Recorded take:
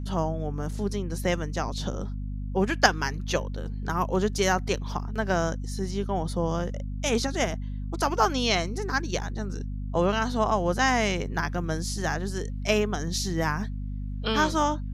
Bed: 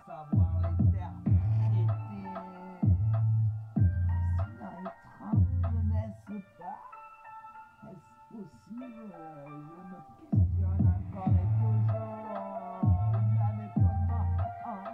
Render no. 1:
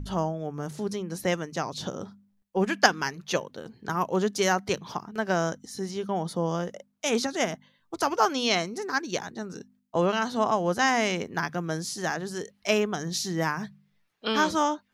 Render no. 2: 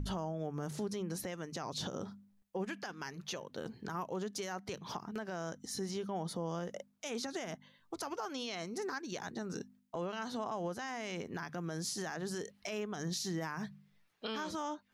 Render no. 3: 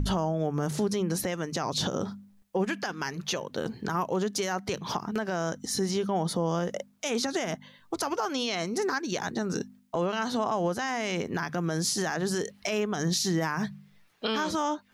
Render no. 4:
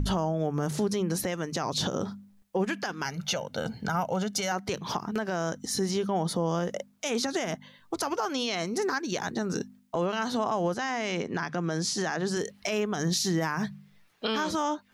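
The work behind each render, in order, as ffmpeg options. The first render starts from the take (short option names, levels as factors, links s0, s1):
-af "bandreject=f=50:t=h:w=4,bandreject=f=100:t=h:w=4,bandreject=f=150:t=h:w=4,bandreject=f=200:t=h:w=4,bandreject=f=250:t=h:w=4"
-af "acompressor=threshold=0.02:ratio=4,alimiter=level_in=1.78:limit=0.0631:level=0:latency=1:release=57,volume=0.562"
-af "volume=3.35"
-filter_complex "[0:a]asettb=1/sr,asplit=3[s0][s1][s2];[s0]atrim=end=3.054[s3];[s1]atrim=start=3.05:end=4.52,asetpts=PTS-STARTPTS,afade=t=in:d=0.004:c=qsin,afade=t=out:st=1.466:d=0.004:c=qsin,aecho=1:1:1.4:0.65,atrim=end_sample=64827[s4];[s2]atrim=start=4.516[s5];[s3][s4]acrossfade=d=0.004:c1=hsin:c2=qsin[s6];[s6][s5]acrossfade=d=0.004:c1=qsin:c2=hsin,asettb=1/sr,asplit=3[s7][s8][s9];[s7]atrim=end=10.744[s10];[s8]atrim=start=10.74:end=12.37,asetpts=PTS-STARTPTS,afade=t=in:d=0.004:c=qsin,afade=t=out:st=1.626:d=0.004:c=qsin,highpass=120,lowpass=7200[s11];[s9]atrim=start=12.366[s12];[s10][s11]acrossfade=d=0.004:c1=hsin:c2=qsin[s13];[s13][s12]acrossfade=d=0.004:c1=qsin:c2=hsin"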